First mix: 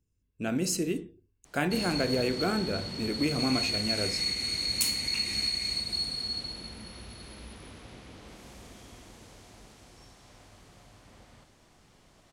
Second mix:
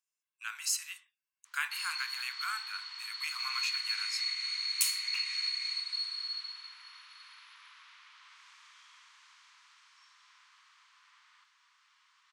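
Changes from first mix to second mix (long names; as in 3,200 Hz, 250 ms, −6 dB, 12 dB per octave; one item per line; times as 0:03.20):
background: add high-frequency loss of the air 110 metres
master: add Butterworth high-pass 1,000 Hz 72 dB per octave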